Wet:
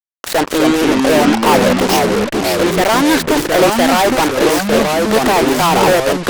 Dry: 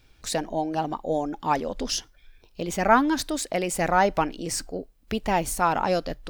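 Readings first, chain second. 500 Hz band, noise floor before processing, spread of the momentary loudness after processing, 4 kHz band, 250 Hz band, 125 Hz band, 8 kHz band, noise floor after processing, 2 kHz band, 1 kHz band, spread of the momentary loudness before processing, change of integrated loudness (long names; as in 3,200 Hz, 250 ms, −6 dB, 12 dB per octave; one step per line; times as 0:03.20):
+15.0 dB, −59 dBFS, 4 LU, +16.0 dB, +15.5 dB, +12.5 dB, +11.0 dB, −26 dBFS, +14.0 dB, +10.5 dB, 10 LU, +13.0 dB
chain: time-frequency box erased 0:00.44–0:00.97, 570–1,800 Hz
three-way crossover with the lows and the highs turned down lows −23 dB, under 270 Hz, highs −17 dB, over 2,300 Hz
downward compressor 2 to 1, threshold −27 dBFS, peak gain reduction 8.5 dB
fuzz pedal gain 38 dB, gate −46 dBFS
harmonic generator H 7 −10 dB, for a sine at −10.5 dBFS
delay with pitch and tempo change per echo 189 ms, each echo −3 semitones, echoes 3
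level +1.5 dB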